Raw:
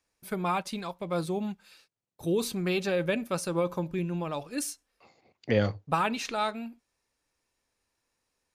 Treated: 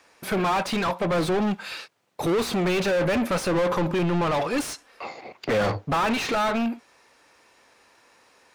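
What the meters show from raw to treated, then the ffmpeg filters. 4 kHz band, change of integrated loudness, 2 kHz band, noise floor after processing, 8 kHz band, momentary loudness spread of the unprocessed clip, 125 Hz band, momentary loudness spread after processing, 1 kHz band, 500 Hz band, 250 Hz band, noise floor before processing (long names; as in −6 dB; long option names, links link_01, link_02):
+7.0 dB, +6.0 dB, +7.5 dB, −59 dBFS, +3.0 dB, 10 LU, +4.5 dB, 13 LU, +7.0 dB, +6.5 dB, +6.5 dB, −81 dBFS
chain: -filter_complex "[0:a]acontrast=83,asplit=2[link_01][link_02];[link_02]highpass=frequency=720:poles=1,volume=36dB,asoftclip=type=tanh:threshold=-7.5dB[link_03];[link_01][link_03]amix=inputs=2:normalize=0,lowpass=frequency=1700:poles=1,volume=-6dB,volume=-8dB"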